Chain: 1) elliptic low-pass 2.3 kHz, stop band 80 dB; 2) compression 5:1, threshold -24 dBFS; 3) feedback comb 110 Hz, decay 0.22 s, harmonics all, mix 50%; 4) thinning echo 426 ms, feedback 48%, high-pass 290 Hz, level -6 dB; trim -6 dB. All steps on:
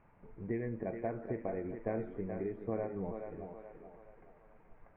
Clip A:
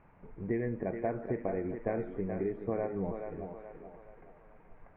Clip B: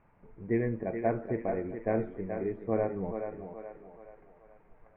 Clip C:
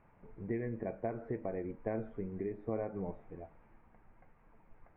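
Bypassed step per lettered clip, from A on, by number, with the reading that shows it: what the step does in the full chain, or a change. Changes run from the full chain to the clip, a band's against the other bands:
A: 3, loudness change +4.0 LU; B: 2, mean gain reduction 3.0 dB; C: 4, echo-to-direct -5.0 dB to none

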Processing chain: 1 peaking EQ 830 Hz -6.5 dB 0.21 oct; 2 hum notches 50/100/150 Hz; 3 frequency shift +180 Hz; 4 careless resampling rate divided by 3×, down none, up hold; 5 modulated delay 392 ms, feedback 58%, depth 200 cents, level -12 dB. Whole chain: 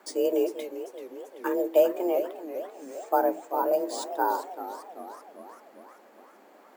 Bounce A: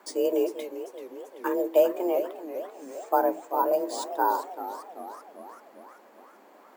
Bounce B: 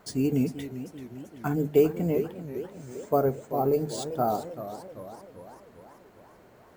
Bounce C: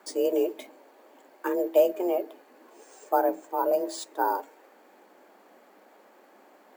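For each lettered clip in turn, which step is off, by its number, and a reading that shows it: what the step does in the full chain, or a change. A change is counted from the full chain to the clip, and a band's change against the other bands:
1, 1 kHz band +1.5 dB; 3, 250 Hz band +5.5 dB; 5, momentary loudness spread change -8 LU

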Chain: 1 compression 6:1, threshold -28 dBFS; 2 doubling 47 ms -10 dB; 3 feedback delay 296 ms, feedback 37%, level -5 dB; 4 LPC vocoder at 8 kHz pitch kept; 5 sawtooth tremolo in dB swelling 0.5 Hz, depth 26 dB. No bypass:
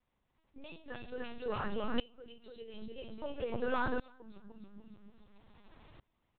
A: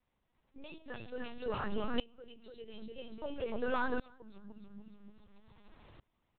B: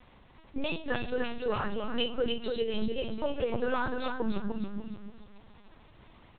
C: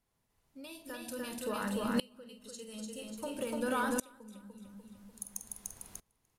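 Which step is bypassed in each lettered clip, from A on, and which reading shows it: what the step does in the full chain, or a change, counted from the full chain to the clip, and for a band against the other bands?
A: 2, 125 Hz band -2.0 dB; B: 5, momentary loudness spread change -12 LU; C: 4, 250 Hz band +4.0 dB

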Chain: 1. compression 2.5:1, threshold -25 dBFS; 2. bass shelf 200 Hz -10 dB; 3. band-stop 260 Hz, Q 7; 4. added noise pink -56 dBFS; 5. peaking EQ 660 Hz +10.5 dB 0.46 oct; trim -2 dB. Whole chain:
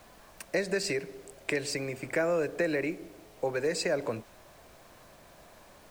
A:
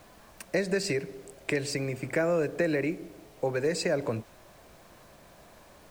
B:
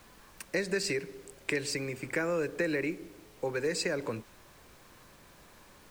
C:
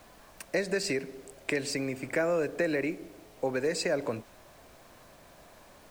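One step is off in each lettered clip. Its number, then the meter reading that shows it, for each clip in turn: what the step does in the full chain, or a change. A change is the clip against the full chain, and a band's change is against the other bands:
2, 125 Hz band +6.0 dB; 5, 1 kHz band -3.0 dB; 3, 250 Hz band +1.5 dB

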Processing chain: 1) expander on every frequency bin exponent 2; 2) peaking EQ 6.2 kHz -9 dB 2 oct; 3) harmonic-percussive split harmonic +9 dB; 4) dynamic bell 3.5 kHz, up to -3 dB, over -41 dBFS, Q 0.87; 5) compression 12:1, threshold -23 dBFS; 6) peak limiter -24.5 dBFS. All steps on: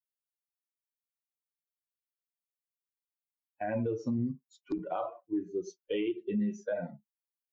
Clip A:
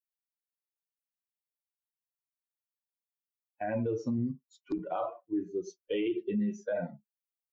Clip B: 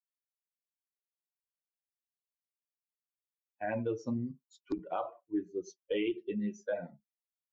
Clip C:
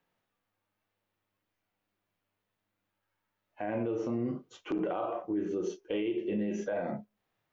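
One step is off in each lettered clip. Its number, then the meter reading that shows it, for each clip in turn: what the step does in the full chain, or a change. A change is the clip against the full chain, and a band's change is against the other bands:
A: 5, mean gain reduction 3.0 dB; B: 3, 125 Hz band -3.0 dB; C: 1, 125 Hz band -4.0 dB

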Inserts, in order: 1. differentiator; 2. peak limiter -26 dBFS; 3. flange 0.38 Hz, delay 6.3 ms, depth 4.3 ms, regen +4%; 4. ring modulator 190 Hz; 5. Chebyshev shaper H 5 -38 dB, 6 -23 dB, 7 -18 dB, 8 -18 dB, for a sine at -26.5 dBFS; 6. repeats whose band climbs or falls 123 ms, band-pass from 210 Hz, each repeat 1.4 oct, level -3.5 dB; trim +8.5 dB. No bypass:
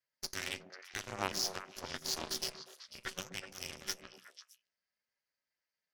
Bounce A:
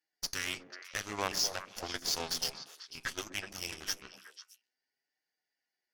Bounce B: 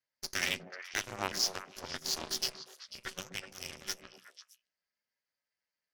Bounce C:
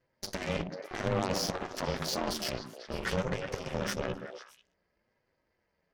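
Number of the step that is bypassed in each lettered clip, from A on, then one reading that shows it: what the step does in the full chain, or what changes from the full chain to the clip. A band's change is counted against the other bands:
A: 4, crest factor change -4.0 dB; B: 2, 2 kHz band +4.0 dB; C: 1, 8 kHz band -10.5 dB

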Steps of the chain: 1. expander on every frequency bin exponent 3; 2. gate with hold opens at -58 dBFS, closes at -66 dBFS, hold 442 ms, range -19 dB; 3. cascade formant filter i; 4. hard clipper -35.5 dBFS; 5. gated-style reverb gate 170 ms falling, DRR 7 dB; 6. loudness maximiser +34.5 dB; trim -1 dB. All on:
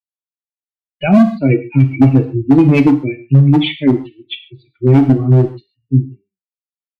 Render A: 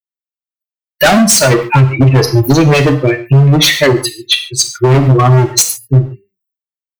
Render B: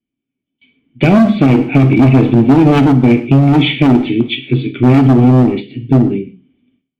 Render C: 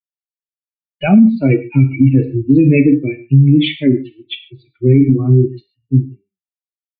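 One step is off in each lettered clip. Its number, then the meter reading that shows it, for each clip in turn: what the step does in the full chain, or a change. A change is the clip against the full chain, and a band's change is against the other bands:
3, 250 Hz band -12.0 dB; 1, momentary loudness spread change -4 LU; 4, distortion -9 dB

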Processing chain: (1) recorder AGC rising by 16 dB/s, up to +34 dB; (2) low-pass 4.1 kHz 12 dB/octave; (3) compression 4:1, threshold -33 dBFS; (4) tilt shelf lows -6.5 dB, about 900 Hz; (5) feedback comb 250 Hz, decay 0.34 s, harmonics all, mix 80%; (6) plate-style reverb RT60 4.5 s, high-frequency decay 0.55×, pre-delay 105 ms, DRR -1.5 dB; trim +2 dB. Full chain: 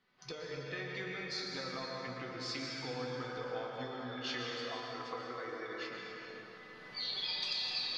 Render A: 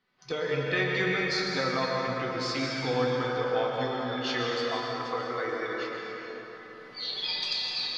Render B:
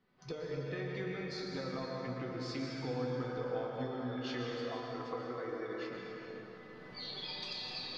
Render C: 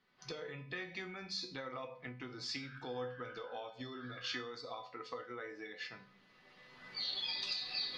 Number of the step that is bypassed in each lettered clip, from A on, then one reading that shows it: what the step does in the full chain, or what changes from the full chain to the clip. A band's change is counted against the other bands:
3, mean gain reduction 8.5 dB; 4, 125 Hz band +8.5 dB; 6, loudness change -2.5 LU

